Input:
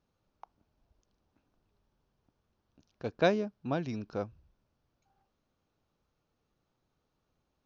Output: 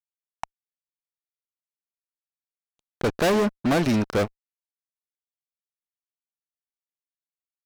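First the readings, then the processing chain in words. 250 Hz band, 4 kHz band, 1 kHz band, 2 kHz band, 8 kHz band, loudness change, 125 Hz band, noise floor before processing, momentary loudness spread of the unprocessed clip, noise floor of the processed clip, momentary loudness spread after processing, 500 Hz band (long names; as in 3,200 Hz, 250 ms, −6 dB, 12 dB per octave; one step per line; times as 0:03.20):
+12.0 dB, +11.0 dB, +9.0 dB, +9.5 dB, can't be measured, +9.5 dB, +10.5 dB, −81 dBFS, 13 LU, below −85 dBFS, 20 LU, +8.0 dB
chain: dynamic equaliser 130 Hz, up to −7 dB, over −52 dBFS, Q 1.7
fuzz pedal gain 41 dB, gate −50 dBFS
level −5 dB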